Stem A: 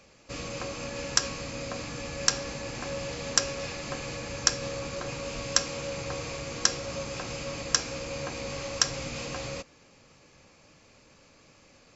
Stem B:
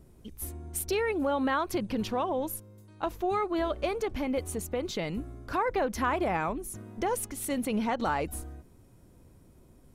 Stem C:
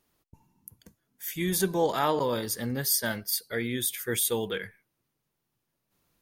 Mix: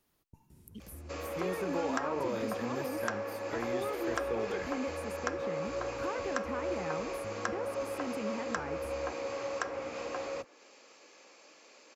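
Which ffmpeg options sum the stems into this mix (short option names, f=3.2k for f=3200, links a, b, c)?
-filter_complex "[0:a]highpass=f=320:w=0.5412,highpass=f=320:w=1.3066,adelay=800,volume=1.5dB[a];[1:a]highpass=73,equalizer=f=740:t=o:w=1.9:g=-14.5,alimiter=level_in=5dB:limit=-24dB:level=0:latency=1:release=394,volume=-5dB,adelay=500,volume=1.5dB[b];[2:a]alimiter=limit=-22.5dB:level=0:latency=1,volume=-2.5dB[c];[a][b][c]amix=inputs=3:normalize=0,acrossover=split=260|1800[d][e][f];[d]acompressor=threshold=-45dB:ratio=4[g];[e]acompressor=threshold=-28dB:ratio=4[h];[f]acompressor=threshold=-53dB:ratio=4[i];[g][h][i]amix=inputs=3:normalize=0"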